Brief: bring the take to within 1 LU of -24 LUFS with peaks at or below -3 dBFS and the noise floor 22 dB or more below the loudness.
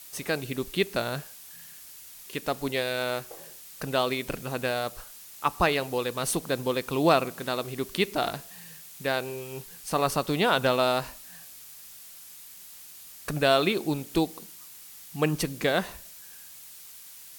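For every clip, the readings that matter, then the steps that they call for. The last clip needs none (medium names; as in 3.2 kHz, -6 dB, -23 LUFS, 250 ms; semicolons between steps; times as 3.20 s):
noise floor -47 dBFS; noise floor target -50 dBFS; loudness -28.0 LUFS; peak level -8.5 dBFS; loudness target -24.0 LUFS
-> noise print and reduce 6 dB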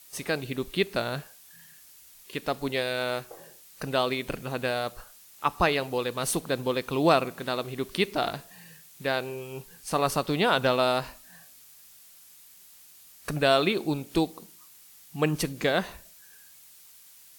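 noise floor -53 dBFS; loudness -28.0 LUFS; peak level -8.5 dBFS; loudness target -24.0 LUFS
-> trim +4 dB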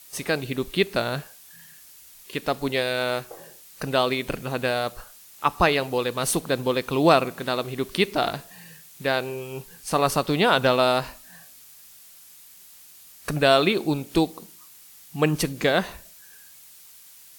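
loudness -24.0 LUFS; peak level -4.5 dBFS; noise floor -49 dBFS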